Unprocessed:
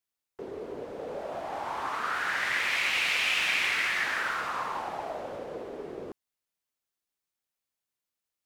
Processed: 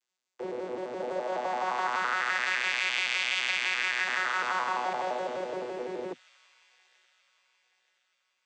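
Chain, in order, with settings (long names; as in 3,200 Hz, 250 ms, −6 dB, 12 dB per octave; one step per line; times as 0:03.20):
vocoder with an arpeggio as carrier bare fifth, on B2, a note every 85 ms
high-pass filter 230 Hz 12 dB per octave
spectral tilt +3.5 dB per octave
downward compressor, threshold −29 dBFS, peak gain reduction 8.5 dB
on a send: delay with a high-pass on its return 927 ms, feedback 41%, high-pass 3,100 Hz, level −15 dB
on the sum: highs frequency-modulated by the lows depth 0.12 ms
level +4.5 dB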